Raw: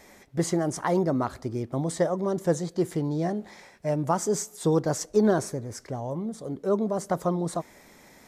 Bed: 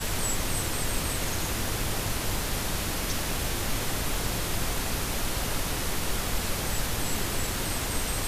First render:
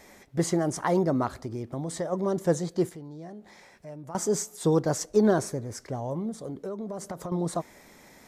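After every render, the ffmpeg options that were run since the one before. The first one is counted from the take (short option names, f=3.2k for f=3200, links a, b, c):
-filter_complex "[0:a]asplit=3[a][b][c];[a]afade=t=out:st=1.43:d=0.02[d];[b]acompressor=threshold=-32dB:ratio=2:attack=3.2:release=140:knee=1:detection=peak,afade=t=in:st=1.43:d=0.02,afade=t=out:st=2.11:d=0.02[e];[c]afade=t=in:st=2.11:d=0.02[f];[d][e][f]amix=inputs=3:normalize=0,asettb=1/sr,asplit=3[g][h][i];[g]atrim=end=2.894[j];[h]atrim=start=2.89:end=4.15,asetpts=PTS-STARTPTS,afade=t=in:d=0.004:c=qsin,afade=t=out:st=1.256:d=0.004:c=qsin,acompressor=threshold=-51dB:ratio=2:attack=3.2:release=140:knee=1:detection=peak[k];[i]atrim=start=4.146[l];[j][k]acrossfade=d=0.004:c1=hsin:c2=qsin[m];[m][l]acrossfade=d=0.004:c1=qsin:c2=hsin,asettb=1/sr,asplit=3[n][o][p];[n]atrim=end=6.454[q];[o]atrim=start=6.45:end=7.32,asetpts=PTS-STARTPTS,afade=t=in:d=0.004:c=qsin,afade=t=out:st=0.866:d=0.004:c=qsin,acompressor=threshold=-31dB:ratio=10:attack=3.2:release=140:knee=1:detection=peak[r];[p]atrim=start=7.316[s];[q][r]acrossfade=d=0.004:c1=hsin:c2=qsin[t];[t][s]acrossfade=d=0.004:c1=qsin:c2=hsin"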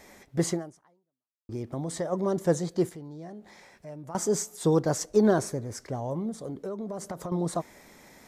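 -filter_complex "[0:a]asplit=2[a][b];[a]atrim=end=1.49,asetpts=PTS-STARTPTS,afade=t=out:st=0.51:d=0.98:c=exp[c];[b]atrim=start=1.49,asetpts=PTS-STARTPTS,afade=t=in:d=0.004:c=hsin[d];[c][d]concat=n=2:v=0:a=1"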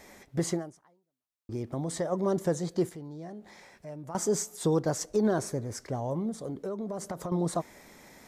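-af "alimiter=limit=-17.5dB:level=0:latency=1:release=198"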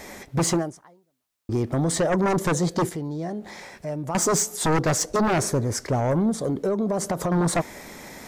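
-af "aeval=exprs='0.141*sin(PI/2*2.51*val(0)/0.141)':c=same"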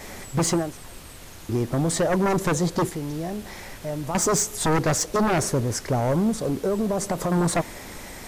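-filter_complex "[1:a]volume=-13.5dB[a];[0:a][a]amix=inputs=2:normalize=0"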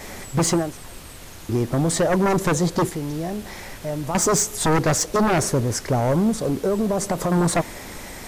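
-af "volume=2.5dB"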